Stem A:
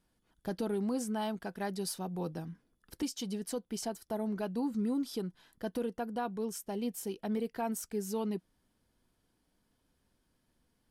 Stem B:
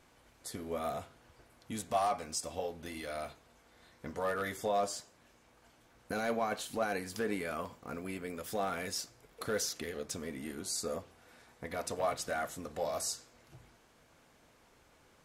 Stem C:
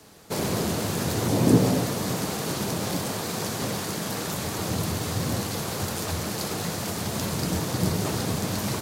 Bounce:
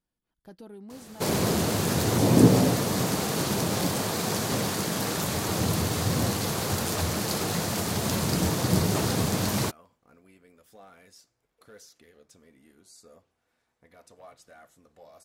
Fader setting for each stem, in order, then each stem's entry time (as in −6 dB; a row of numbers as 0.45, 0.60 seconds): −11.5, −16.5, +1.5 decibels; 0.00, 2.20, 0.90 seconds